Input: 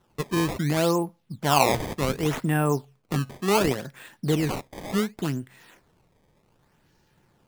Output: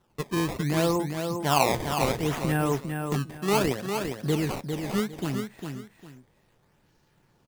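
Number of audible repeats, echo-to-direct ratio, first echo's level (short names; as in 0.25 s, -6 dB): 2, -5.5 dB, -6.0 dB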